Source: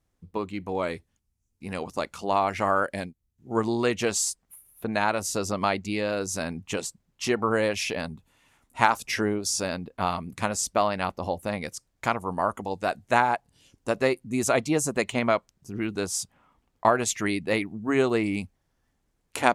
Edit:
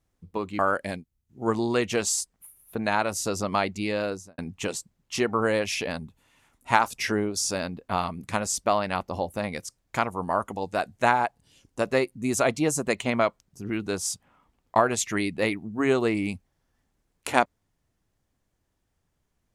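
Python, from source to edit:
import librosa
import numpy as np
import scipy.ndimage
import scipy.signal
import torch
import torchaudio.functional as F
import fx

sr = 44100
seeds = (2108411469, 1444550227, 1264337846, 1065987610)

y = fx.studio_fade_out(x, sr, start_s=6.11, length_s=0.36)
y = fx.edit(y, sr, fx.cut(start_s=0.59, length_s=2.09), tone=tone)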